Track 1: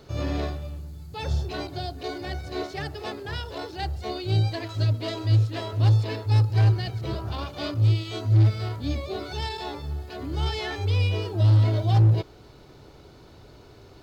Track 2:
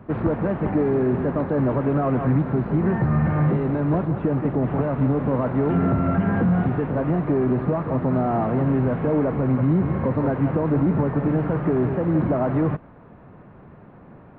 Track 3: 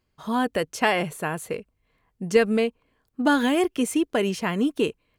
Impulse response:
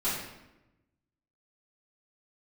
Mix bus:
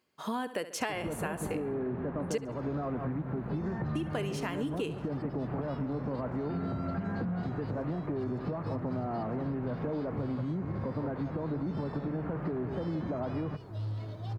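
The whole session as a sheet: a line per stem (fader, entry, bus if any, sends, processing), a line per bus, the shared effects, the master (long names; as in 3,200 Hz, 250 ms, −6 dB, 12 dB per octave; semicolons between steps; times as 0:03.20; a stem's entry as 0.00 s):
−17.5 dB, 2.35 s, no send, no echo send, no processing
−5.5 dB, 0.80 s, no send, no echo send, hum removal 65.82 Hz, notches 2
+1.0 dB, 0.00 s, muted 0:02.38–0:03.95, no send, echo send −15.5 dB, high-pass filter 220 Hz 12 dB per octave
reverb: not used
echo: repeating echo 69 ms, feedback 42%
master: downward compressor 6 to 1, threshold −31 dBFS, peak gain reduction 18 dB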